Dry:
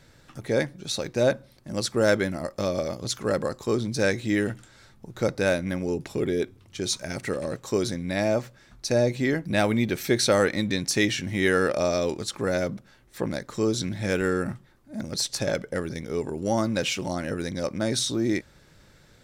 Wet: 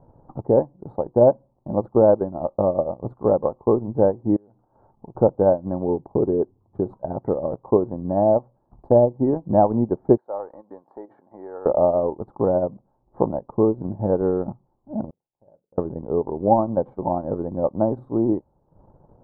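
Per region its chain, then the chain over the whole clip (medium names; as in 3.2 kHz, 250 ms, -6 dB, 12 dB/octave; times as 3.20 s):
4.36–5.15 s: compression 12:1, threshold -37 dBFS + bass shelf 240 Hz -7.5 dB
10.17–11.66 s: compression 3:1, threshold -26 dBFS + band-pass 740–4600 Hz
15.10–15.78 s: flutter echo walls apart 7.3 m, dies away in 0.24 s + inverted gate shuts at -31 dBFS, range -35 dB
whole clip: peaking EQ 790 Hz +7.5 dB 0.66 oct; transient shaper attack +5 dB, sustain -12 dB; elliptic low-pass 1 kHz, stop band 60 dB; trim +3.5 dB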